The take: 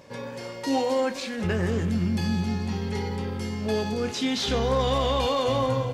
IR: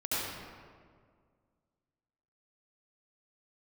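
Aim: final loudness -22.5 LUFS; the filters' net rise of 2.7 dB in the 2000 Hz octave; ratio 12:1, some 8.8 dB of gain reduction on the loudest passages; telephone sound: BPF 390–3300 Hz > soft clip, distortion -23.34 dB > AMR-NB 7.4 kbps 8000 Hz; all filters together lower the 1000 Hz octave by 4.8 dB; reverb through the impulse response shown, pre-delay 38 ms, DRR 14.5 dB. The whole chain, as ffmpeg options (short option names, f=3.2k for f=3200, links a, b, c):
-filter_complex "[0:a]equalizer=f=1k:t=o:g=-7,equalizer=f=2k:t=o:g=6,acompressor=threshold=-30dB:ratio=12,asplit=2[a][b];[1:a]atrim=start_sample=2205,adelay=38[c];[b][c]afir=irnorm=-1:irlink=0,volume=-22dB[d];[a][d]amix=inputs=2:normalize=0,highpass=390,lowpass=3.3k,asoftclip=threshold=-27.5dB,volume=18dB" -ar 8000 -c:a libopencore_amrnb -b:a 7400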